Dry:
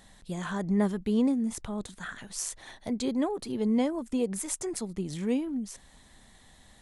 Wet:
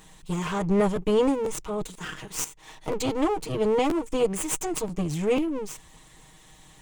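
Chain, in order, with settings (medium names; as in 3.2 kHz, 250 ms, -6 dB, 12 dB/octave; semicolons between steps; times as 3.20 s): comb filter that takes the minimum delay 6.4 ms; rippled EQ curve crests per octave 0.71, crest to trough 6 dB; 2.43–2.88 s: compression 10:1, threshold -45 dBFS, peak gain reduction 13 dB; crackling interface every 0.49 s, samples 512, repeat, from 0.95 s; trim +5.5 dB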